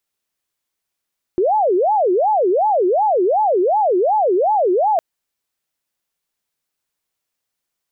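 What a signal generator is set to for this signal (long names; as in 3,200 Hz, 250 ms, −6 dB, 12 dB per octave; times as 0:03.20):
siren wail 353–867 Hz 2.7 per second sine −12.5 dBFS 3.61 s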